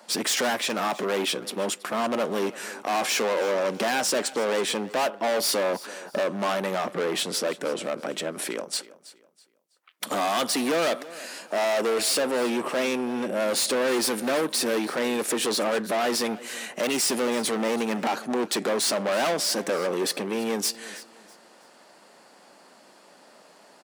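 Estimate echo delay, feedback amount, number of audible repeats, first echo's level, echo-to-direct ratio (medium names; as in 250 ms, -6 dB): 326 ms, 30%, 2, -18.5 dB, -18.0 dB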